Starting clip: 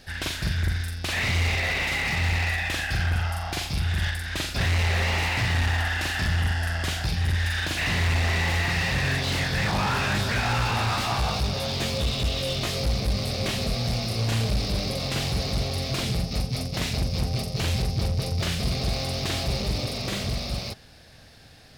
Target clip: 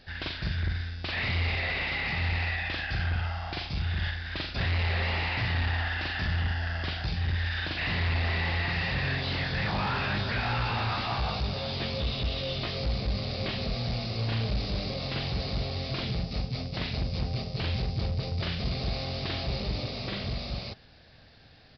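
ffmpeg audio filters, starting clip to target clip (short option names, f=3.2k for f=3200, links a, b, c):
-af "aresample=11025,aresample=44100,volume=-4.5dB"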